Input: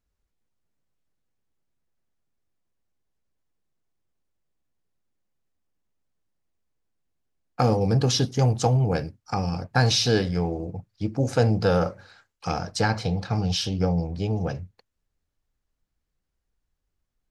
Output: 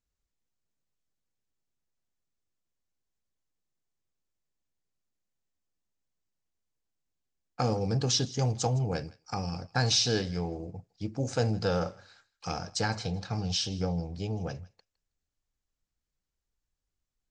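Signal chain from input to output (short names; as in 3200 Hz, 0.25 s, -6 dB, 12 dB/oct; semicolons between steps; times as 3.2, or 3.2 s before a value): steep low-pass 8000 Hz 48 dB/oct; high shelf 5300 Hz +11.5 dB; thinning echo 0.16 s, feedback 18%, high-pass 1200 Hz, level -20.5 dB; gain -7.5 dB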